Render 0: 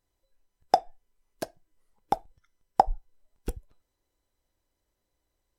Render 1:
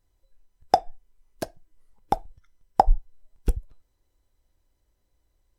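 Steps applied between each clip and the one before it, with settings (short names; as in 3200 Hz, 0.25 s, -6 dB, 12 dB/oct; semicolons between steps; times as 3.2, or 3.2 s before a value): low shelf 120 Hz +11 dB; gain +2 dB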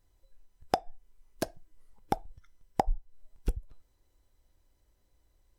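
compressor 3:1, threshold -29 dBFS, peak gain reduction 14 dB; gain +1.5 dB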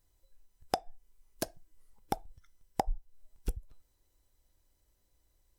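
high shelf 4600 Hz +8.5 dB; gain -4 dB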